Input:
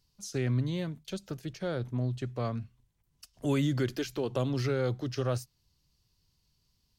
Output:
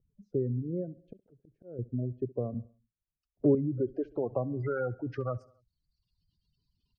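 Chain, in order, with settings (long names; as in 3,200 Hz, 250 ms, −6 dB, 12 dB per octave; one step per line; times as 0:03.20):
gate on every frequency bin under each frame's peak −20 dB strong
reverb reduction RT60 0.95 s
0:01.08–0:01.79: volume swells 461 ms
0:04.58–0:05.10: parametric band 1,800 Hz +9 dB 2.5 octaves
downward compressor, threshold −29 dBFS, peak gain reduction 5.5 dB
low-pass filter sweep 450 Hz → 2,800 Hz, 0:03.62–0:05.95
repeating echo 68 ms, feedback 57%, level −22 dB
0:02.54–0:03.55: multiband upward and downward expander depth 70%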